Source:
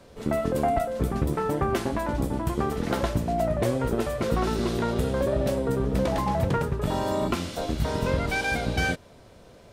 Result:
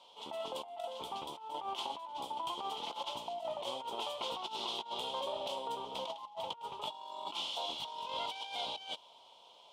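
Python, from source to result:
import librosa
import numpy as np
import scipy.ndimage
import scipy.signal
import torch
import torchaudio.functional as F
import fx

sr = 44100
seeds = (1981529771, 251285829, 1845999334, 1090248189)

y = fx.double_bandpass(x, sr, hz=1700.0, octaves=1.8)
y = fx.tilt_eq(y, sr, slope=2.5)
y = fx.over_compress(y, sr, threshold_db=-42.0, ratio=-0.5)
y = F.gain(torch.from_numpy(y), 2.5).numpy()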